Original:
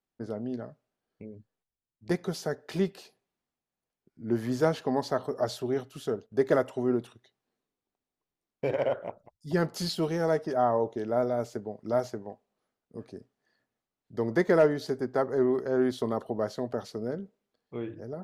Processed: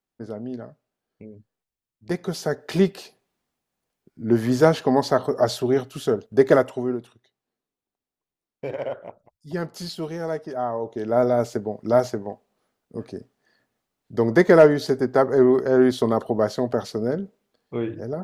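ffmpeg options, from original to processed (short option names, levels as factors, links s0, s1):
-af "volume=9.44,afade=t=in:st=2.12:d=0.6:silence=0.446684,afade=t=out:st=6.47:d=0.51:silence=0.298538,afade=t=in:st=10.81:d=0.48:silence=0.298538"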